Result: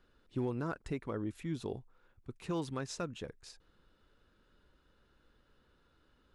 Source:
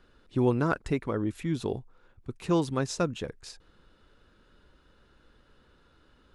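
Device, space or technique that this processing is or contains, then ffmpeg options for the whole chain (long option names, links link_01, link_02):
limiter into clipper: -filter_complex "[0:a]asplit=3[link_01][link_02][link_03];[link_01]afade=type=out:start_time=1.79:duration=0.02[link_04];[link_02]adynamicequalizer=threshold=0.00501:dfrequency=1900:dqfactor=0.8:tfrequency=1900:tqfactor=0.8:attack=5:release=100:ratio=0.375:range=2:mode=boostabove:tftype=bell,afade=type=in:start_time=1.79:duration=0.02,afade=type=out:start_time=3.15:duration=0.02[link_05];[link_03]afade=type=in:start_time=3.15:duration=0.02[link_06];[link_04][link_05][link_06]amix=inputs=3:normalize=0,alimiter=limit=-17.5dB:level=0:latency=1:release=134,asoftclip=type=hard:threshold=-18.5dB,volume=-8dB"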